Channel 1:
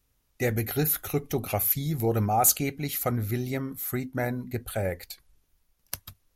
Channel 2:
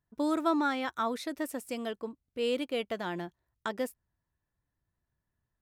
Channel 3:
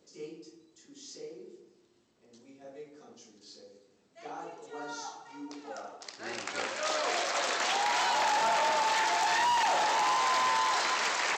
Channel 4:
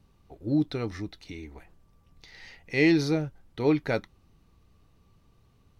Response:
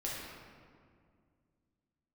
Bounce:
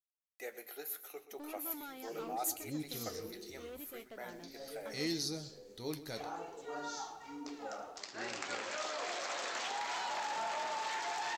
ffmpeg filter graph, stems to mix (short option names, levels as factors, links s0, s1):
-filter_complex "[0:a]highpass=f=420:w=0.5412,highpass=f=420:w=1.3066,acrusher=bits=8:mix=0:aa=0.000001,volume=0.251,asplit=3[s0][s1][s2];[s1]volume=0.106[s3];[s2]volume=0.211[s4];[1:a]asoftclip=type=tanh:threshold=0.0266,adelay=1200,volume=0.335[s5];[2:a]acompressor=threshold=0.0178:ratio=12,adelay=1950,volume=1.41[s6];[3:a]aexciter=amount=8.7:drive=5.3:freq=3800,adelay=2200,volume=0.224,asplit=2[s7][s8];[s8]volume=0.168[s9];[4:a]atrim=start_sample=2205[s10];[s3][s10]afir=irnorm=-1:irlink=0[s11];[s4][s9]amix=inputs=2:normalize=0,aecho=0:1:126:1[s12];[s0][s5][s6][s7][s11][s12]amix=inputs=6:normalize=0,acompressor=mode=upward:threshold=0.00562:ratio=2.5,flanger=delay=7.1:depth=7.3:regen=-61:speed=0.72:shape=sinusoidal"